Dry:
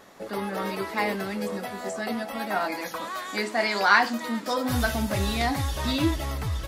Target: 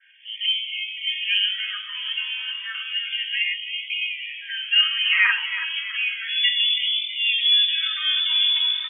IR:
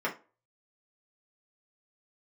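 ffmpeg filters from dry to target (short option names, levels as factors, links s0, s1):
-filter_complex "[0:a]lowpass=f=3000:t=q:w=0.5098,lowpass=f=3000:t=q:w=0.6013,lowpass=f=3000:t=q:w=0.9,lowpass=f=3000:t=q:w=2.563,afreqshift=-3500,aecho=1:1:3.2:0.87,areverse,acompressor=mode=upward:threshold=0.00708:ratio=2.5,areverse,acrossover=split=2100[s0][s1];[s0]aeval=exprs='val(0)*(1-1/2+1/2*cos(2*PI*1.5*n/s))':c=same[s2];[s1]aeval=exprs='val(0)*(1-1/2-1/2*cos(2*PI*1.5*n/s))':c=same[s3];[s2][s3]amix=inputs=2:normalize=0,asplit=2[s4][s5];[s5]alimiter=limit=0.119:level=0:latency=1:release=471,volume=0.75[s6];[s4][s6]amix=inputs=2:normalize=0,atempo=0.75,lowshelf=f=740:t=q:w=1.5:g=11,asplit=7[s7][s8][s9][s10][s11][s12][s13];[s8]adelay=325,afreqshift=50,volume=0.282[s14];[s9]adelay=650,afreqshift=100,volume=0.155[s15];[s10]adelay=975,afreqshift=150,volume=0.0851[s16];[s11]adelay=1300,afreqshift=200,volume=0.0468[s17];[s12]adelay=1625,afreqshift=250,volume=0.0257[s18];[s13]adelay=1950,afreqshift=300,volume=0.0141[s19];[s7][s14][s15][s16][s17][s18][s19]amix=inputs=7:normalize=0,adynamicequalizer=threshold=0.0251:dfrequency=2700:dqfactor=1.4:tfrequency=2700:tqfactor=1.4:attack=5:release=100:ratio=0.375:range=2:mode=boostabove:tftype=bell,bandreject=f=250.8:t=h:w=4,bandreject=f=501.6:t=h:w=4,bandreject=f=752.4:t=h:w=4,bandreject=f=1003.2:t=h:w=4,bandreject=f=1254:t=h:w=4,bandreject=f=1504.8:t=h:w=4,bandreject=f=1755.6:t=h:w=4,bandreject=f=2006.4:t=h:w=4,bandreject=f=2257.2:t=h:w=4,bandreject=f=2508:t=h:w=4,bandreject=f=2758.8:t=h:w=4,bandreject=f=3009.6:t=h:w=4,bandreject=f=3260.4:t=h:w=4,bandreject=f=3511.2:t=h:w=4,bandreject=f=3762:t=h:w=4,bandreject=f=4012.8:t=h:w=4,bandreject=f=4263.6:t=h:w=4,bandreject=f=4514.4:t=h:w=4,bandreject=f=4765.2:t=h:w=4,bandreject=f=5016:t=h:w=4,bandreject=f=5266.8:t=h:w=4,bandreject=f=5517.6:t=h:w=4,bandreject=f=5768.4:t=h:w=4,bandreject=f=6019.2:t=h:w=4,bandreject=f=6270:t=h:w=4,bandreject=f=6520.8:t=h:w=4,bandreject=f=6771.6:t=h:w=4,bandreject=f=7022.4:t=h:w=4,bandreject=f=7273.2:t=h:w=4,bandreject=f=7524:t=h:w=4,afftfilt=real='re*gte(b*sr/1024,890*pow(2000/890,0.5+0.5*sin(2*PI*0.32*pts/sr)))':imag='im*gte(b*sr/1024,890*pow(2000/890,0.5+0.5*sin(2*PI*0.32*pts/sr)))':win_size=1024:overlap=0.75"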